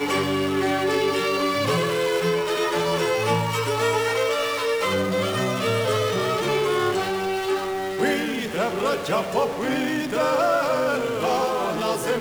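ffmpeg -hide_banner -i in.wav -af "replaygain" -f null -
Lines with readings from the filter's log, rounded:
track_gain = +5.5 dB
track_peak = 0.218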